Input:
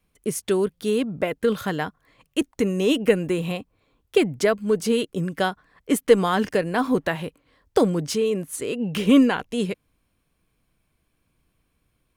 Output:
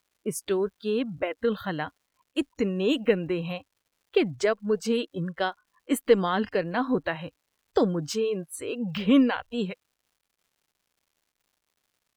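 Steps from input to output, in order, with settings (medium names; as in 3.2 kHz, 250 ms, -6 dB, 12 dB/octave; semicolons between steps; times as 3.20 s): spectral noise reduction 23 dB; crackle 260 per s -54 dBFS; trim -4 dB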